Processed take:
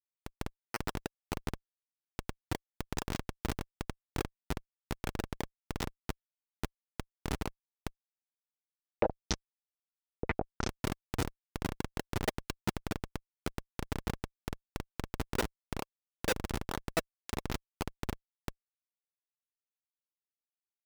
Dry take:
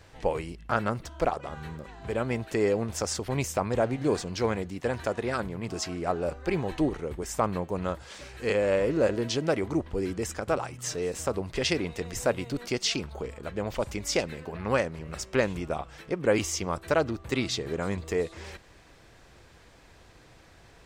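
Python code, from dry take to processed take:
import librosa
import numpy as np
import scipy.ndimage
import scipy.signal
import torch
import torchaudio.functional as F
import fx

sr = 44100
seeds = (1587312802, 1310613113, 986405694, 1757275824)

y = x + 10.0 ** (-17.0 / 20.0) * np.pad(x, (int(79 * sr / 1000.0), 0))[:len(x)]
y = fx.level_steps(y, sr, step_db=21)
y = fx.schmitt(y, sr, flips_db=-33.0)
y = fx.low_shelf(y, sr, hz=220.0, db=-8.5)
y = fx.transient(y, sr, attack_db=2, sustain_db=-5)
y = fx.peak_eq(y, sr, hz=690.0, db=-3.5, octaves=0.29)
y = fx.notch_comb(y, sr, f0_hz=550.0)
y = fx.filter_held_lowpass(y, sr, hz=12.0, low_hz=500.0, high_hz=5900.0, at=(8.19, 10.69))
y = y * librosa.db_to_amplitude(17.0)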